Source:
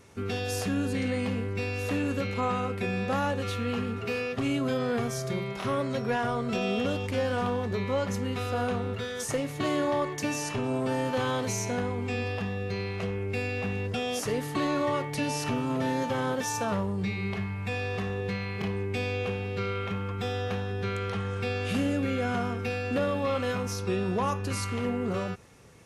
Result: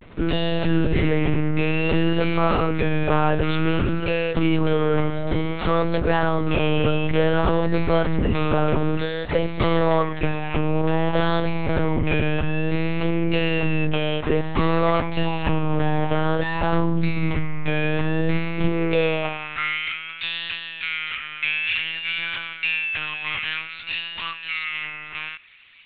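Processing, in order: high-pass sweep 70 Hz -> 2.4 kHz, 18.14–19.78 s; monotone LPC vocoder at 8 kHz 160 Hz; vibrato 0.55 Hz 80 cents; trim +8.5 dB

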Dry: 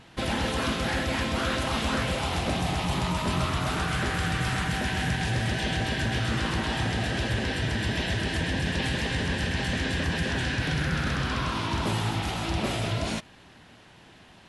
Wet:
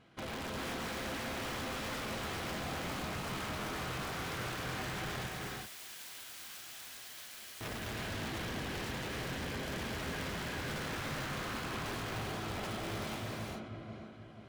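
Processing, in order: hum notches 60/120/180/240/300 Hz; comb of notches 900 Hz; filtered feedback delay 485 ms, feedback 46%, low-pass 1.9 kHz, level -6.5 dB; integer overflow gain 23 dB; 5.26–7.61 s: pre-emphasis filter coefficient 0.97; gated-style reverb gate 420 ms rising, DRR 0 dB; saturation -21.5 dBFS, distortion -17 dB; treble shelf 3.9 kHz -9.5 dB; trim -9 dB

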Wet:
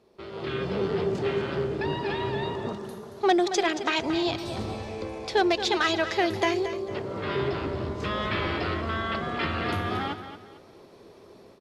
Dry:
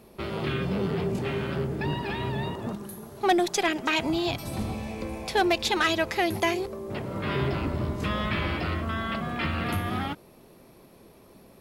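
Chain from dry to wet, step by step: fifteen-band graphic EQ 100 Hz +6 dB, 400 Hz +7 dB, 2.5 kHz -4 dB; level rider gain up to 11.5 dB; Chebyshev low-pass 5.2 kHz, order 2; bass shelf 330 Hz -10 dB; feedback delay 226 ms, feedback 31%, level -11 dB; trim -7.5 dB

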